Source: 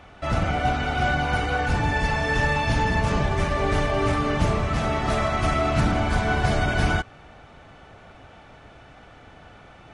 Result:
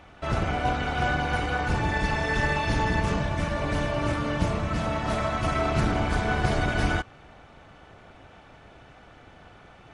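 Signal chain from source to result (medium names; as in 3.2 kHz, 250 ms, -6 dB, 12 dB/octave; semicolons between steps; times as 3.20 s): AM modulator 250 Hz, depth 45%; 3.14–5.55 s: comb of notches 400 Hz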